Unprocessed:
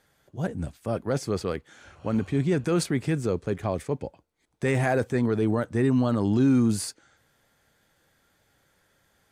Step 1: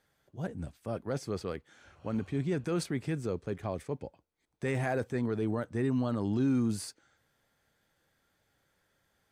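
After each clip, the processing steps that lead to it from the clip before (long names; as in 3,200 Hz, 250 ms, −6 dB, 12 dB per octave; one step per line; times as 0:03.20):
parametric band 10,000 Hz −2 dB
notch filter 6,900 Hz, Q 27
level −7.5 dB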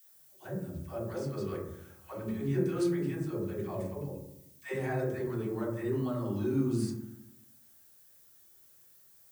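all-pass dispersion lows, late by 121 ms, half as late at 460 Hz
background noise violet −55 dBFS
convolution reverb RT60 0.80 s, pre-delay 3 ms, DRR −2.5 dB
level −7 dB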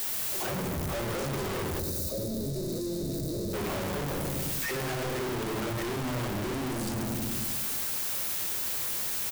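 sign of each sample alone
gain on a spectral selection 0:01.79–0:03.54, 680–3,600 Hz −20 dB
on a send: echo with shifted repeats 106 ms, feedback 59%, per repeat −130 Hz, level −11 dB
on the sum: level +3 dB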